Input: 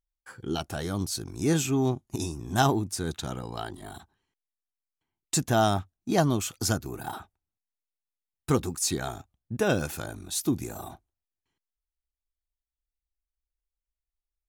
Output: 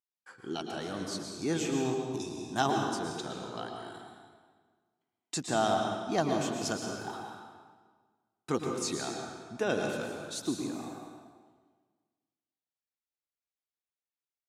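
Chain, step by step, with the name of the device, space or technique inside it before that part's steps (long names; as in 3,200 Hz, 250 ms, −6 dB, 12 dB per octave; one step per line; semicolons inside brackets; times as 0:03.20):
supermarket ceiling speaker (band-pass filter 220–6,700 Hz; convolution reverb RT60 1.5 s, pre-delay 106 ms, DRR 1.5 dB)
level −5 dB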